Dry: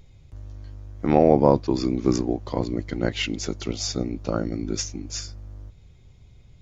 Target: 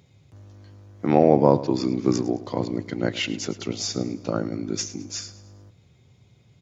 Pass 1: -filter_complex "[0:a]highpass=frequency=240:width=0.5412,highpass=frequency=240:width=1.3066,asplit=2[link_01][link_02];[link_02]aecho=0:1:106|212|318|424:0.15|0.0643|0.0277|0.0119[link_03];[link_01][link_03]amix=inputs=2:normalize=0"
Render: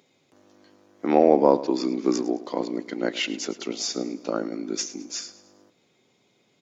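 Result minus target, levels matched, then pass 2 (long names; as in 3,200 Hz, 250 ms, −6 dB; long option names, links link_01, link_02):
125 Hz band −14.0 dB
-filter_complex "[0:a]highpass=frequency=100:width=0.5412,highpass=frequency=100:width=1.3066,asplit=2[link_01][link_02];[link_02]aecho=0:1:106|212|318|424:0.15|0.0643|0.0277|0.0119[link_03];[link_01][link_03]amix=inputs=2:normalize=0"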